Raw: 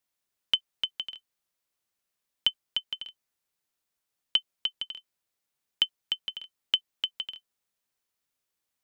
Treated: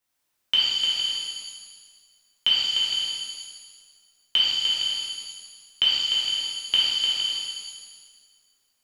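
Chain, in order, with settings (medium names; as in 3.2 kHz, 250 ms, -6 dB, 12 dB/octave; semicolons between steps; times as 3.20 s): pitch-shifted reverb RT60 1.6 s, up +7 st, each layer -8 dB, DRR -8 dB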